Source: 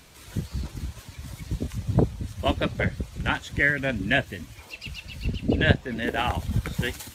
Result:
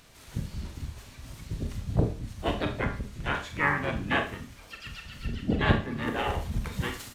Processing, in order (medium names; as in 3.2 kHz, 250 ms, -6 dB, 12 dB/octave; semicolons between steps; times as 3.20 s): harmony voices -12 st -6 dB, -7 st -4 dB, +3 st -11 dB; Schroeder reverb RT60 0.37 s, combs from 27 ms, DRR 4.5 dB; trim -7 dB